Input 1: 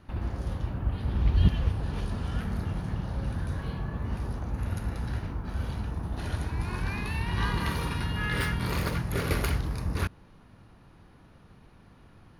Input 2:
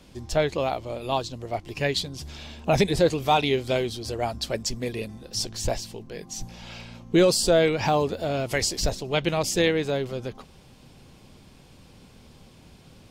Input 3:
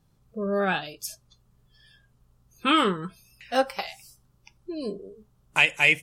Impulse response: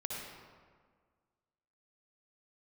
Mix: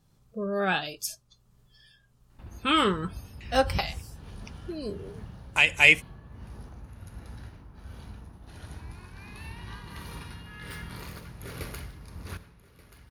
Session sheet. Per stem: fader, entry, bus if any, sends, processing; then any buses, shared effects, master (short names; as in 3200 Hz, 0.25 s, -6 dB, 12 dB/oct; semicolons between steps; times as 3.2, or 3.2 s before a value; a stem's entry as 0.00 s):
-12.0 dB, 2.30 s, send -11 dB, echo send -14 dB, dry
off
+1.5 dB, 0.00 s, no send, no echo send, high shelf 8700 Hz -6 dB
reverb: on, RT60 1.7 s, pre-delay 54 ms
echo: feedback echo 1.181 s, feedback 26%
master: high shelf 3800 Hz +6.5 dB; tremolo triangle 1.4 Hz, depth 50%